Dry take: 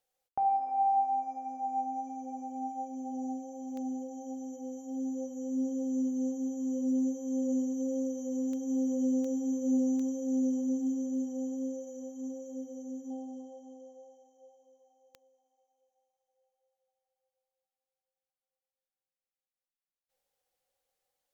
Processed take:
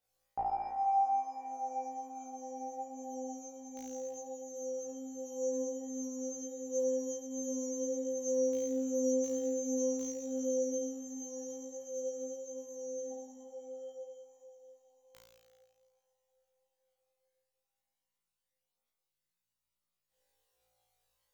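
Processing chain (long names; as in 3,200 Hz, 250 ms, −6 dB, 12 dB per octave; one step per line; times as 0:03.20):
flutter between parallel walls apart 3 metres, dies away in 1.4 s
multi-voice chorus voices 6, 0.15 Hz, delay 18 ms, depth 1.6 ms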